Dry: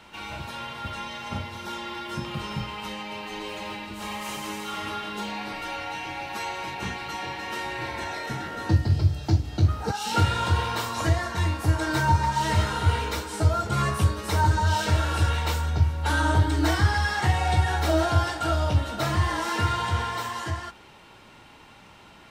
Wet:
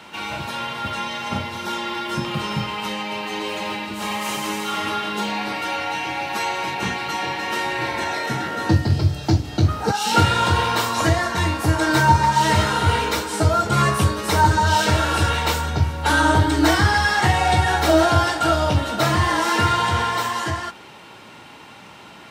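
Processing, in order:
high-pass filter 120 Hz 12 dB per octave
level +8 dB

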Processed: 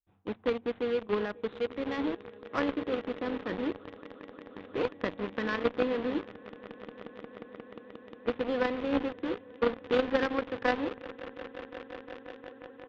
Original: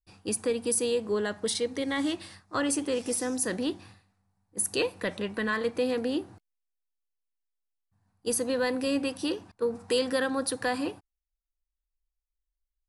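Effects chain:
running median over 15 samples
echo that builds up and dies away 178 ms, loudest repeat 8, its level −17 dB
in parallel at −3.5 dB: bit reduction 5 bits
on the sum: downsampling to 8,000 Hz
harmonic generator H 3 −12 dB, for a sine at −12.5 dBFS

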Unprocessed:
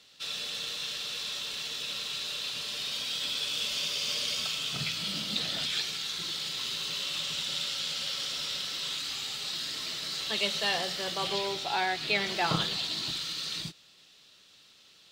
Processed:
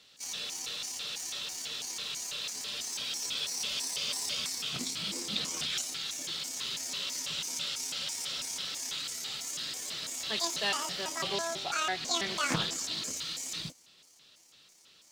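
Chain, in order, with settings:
pitch shifter gated in a rhythm +9 semitones, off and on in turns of 165 ms
highs frequency-modulated by the lows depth 0.47 ms
level −1.5 dB

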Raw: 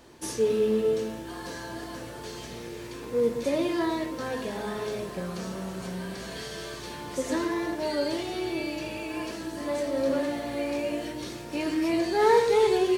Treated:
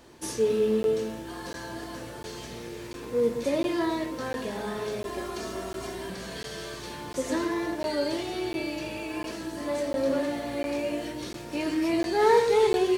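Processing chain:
0:05.05–0:06.10: comb filter 2.9 ms, depth 93%
regular buffer underruns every 0.70 s, samples 512, zero, from 0:00.83

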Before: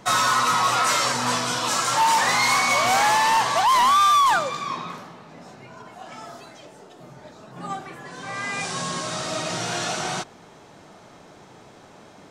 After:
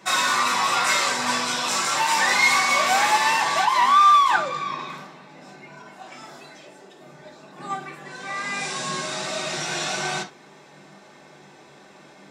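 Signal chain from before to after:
0:03.65–0:04.79: high-shelf EQ 5,700 Hz −9.5 dB
convolution reverb, pre-delay 3 ms, DRR −0.5 dB
level −2.5 dB

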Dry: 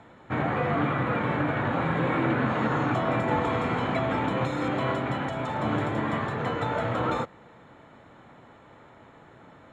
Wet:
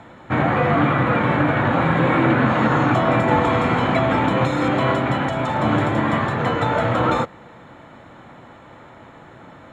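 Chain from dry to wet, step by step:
notch filter 430 Hz, Q 12
level +8.5 dB

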